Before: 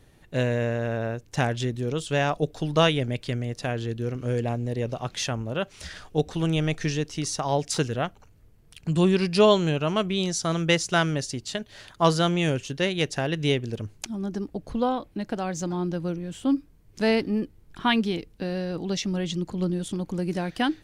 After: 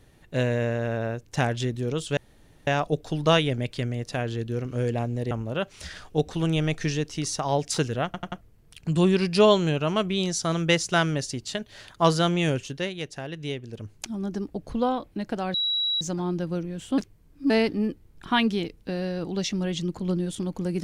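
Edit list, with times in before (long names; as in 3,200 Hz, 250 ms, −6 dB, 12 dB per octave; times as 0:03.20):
0:02.17: splice in room tone 0.50 s
0:04.81–0:05.31: remove
0:08.05: stutter in place 0.09 s, 4 plays
0:12.56–0:14.10: duck −8.5 dB, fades 0.42 s
0:15.54: insert tone 3,890 Hz −22.5 dBFS 0.47 s
0:16.51–0:17.03: reverse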